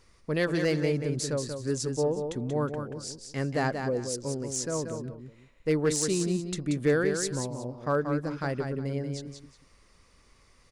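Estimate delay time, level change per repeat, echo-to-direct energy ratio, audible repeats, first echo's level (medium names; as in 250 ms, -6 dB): 183 ms, -11.5 dB, -6.0 dB, 2, -6.5 dB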